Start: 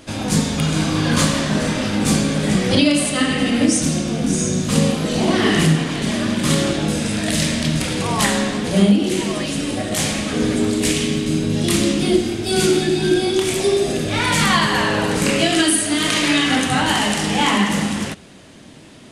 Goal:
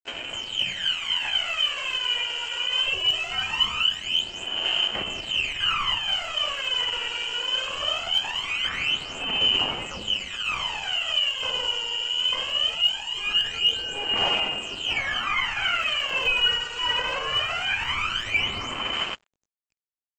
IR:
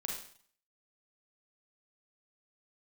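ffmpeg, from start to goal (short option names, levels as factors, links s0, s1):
-filter_complex "[0:a]equalizer=f=700:t=o:w=0.28:g=5,bandreject=f=50:t=h:w=6,bandreject=f=100:t=h:w=6,bandreject=f=150:t=h:w=6,bandreject=f=200:t=h:w=6,bandreject=f=250:t=h:w=6,bandreject=f=300:t=h:w=6,bandreject=f=350:t=h:w=6,bandreject=f=400:t=h:w=6,bandreject=f=450:t=h:w=6,aecho=1:1:393:0.0668,lowpass=f=2600:t=q:w=0.5098,lowpass=f=2600:t=q:w=0.6013,lowpass=f=2600:t=q:w=0.9,lowpass=f=2600:t=q:w=2.563,afreqshift=-3000,acrossover=split=1700[s0][s1];[s0]dynaudnorm=f=720:g=9:m=1.58[s2];[s2][s1]amix=inputs=2:normalize=0,asetrate=48000,aresample=44100,aresample=16000,aeval=exprs='sgn(val(0))*max(abs(val(0))-0.0237,0)':c=same,aresample=44100,alimiter=limit=0.251:level=0:latency=1:release=21,atempo=0.87,aphaser=in_gain=1:out_gain=1:delay=2.1:decay=0.74:speed=0.21:type=sinusoidal,volume=0.398"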